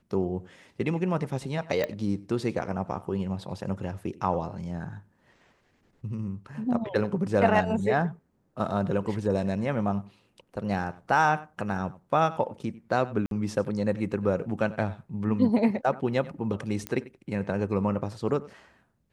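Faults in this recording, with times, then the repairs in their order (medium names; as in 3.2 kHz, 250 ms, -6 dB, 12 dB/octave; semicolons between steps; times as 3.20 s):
1.84 s: pop -16 dBFS
13.26–13.31 s: dropout 52 ms
16.87 s: pop -16 dBFS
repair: de-click; interpolate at 13.26 s, 52 ms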